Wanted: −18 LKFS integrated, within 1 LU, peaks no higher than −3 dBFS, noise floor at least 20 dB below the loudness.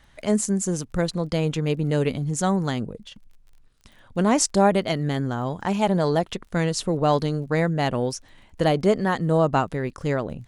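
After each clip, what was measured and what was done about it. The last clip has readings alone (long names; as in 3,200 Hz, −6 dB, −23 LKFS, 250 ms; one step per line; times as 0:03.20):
crackle rate 24 per second; integrated loudness −23.5 LKFS; sample peak −6.5 dBFS; target loudness −18.0 LKFS
→ click removal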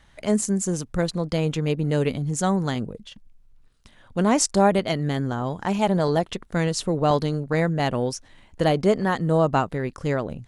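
crackle rate 0.095 per second; integrated loudness −23.5 LKFS; sample peak −6.5 dBFS; target loudness −18.0 LKFS
→ level +5.5 dB
brickwall limiter −3 dBFS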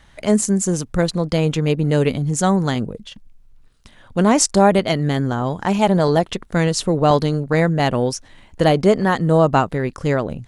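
integrated loudness −18.0 LKFS; sample peak −3.0 dBFS; background noise floor −49 dBFS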